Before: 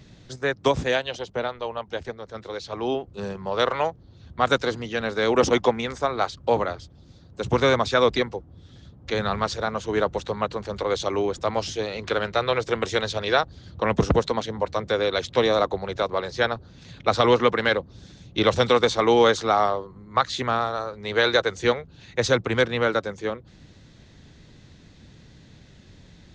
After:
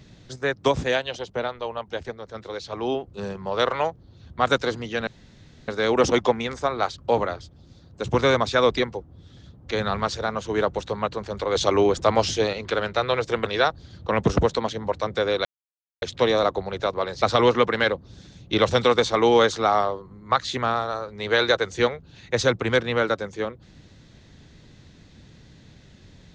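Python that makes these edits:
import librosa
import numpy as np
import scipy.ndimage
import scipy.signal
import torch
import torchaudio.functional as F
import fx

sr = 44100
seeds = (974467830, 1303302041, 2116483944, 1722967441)

y = fx.edit(x, sr, fx.insert_room_tone(at_s=5.07, length_s=0.61),
    fx.clip_gain(start_s=10.94, length_s=0.98, db=5.5),
    fx.cut(start_s=12.85, length_s=0.34),
    fx.insert_silence(at_s=15.18, length_s=0.57),
    fx.cut(start_s=16.38, length_s=0.69), tone=tone)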